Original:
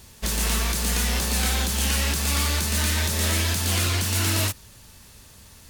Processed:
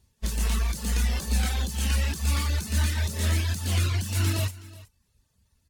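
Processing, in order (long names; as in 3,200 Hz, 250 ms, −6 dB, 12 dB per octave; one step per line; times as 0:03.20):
harmonic generator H 3 −18 dB, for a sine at −14.5 dBFS
reverb reduction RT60 0.7 s
on a send: single-tap delay 371 ms −13 dB
on the sum: every bin expanded away from the loudest bin 1.5 to 1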